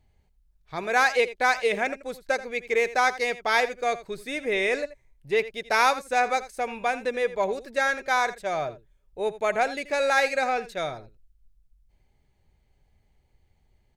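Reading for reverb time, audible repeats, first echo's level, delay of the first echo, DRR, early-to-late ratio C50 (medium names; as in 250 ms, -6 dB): no reverb, 1, -15.5 dB, 83 ms, no reverb, no reverb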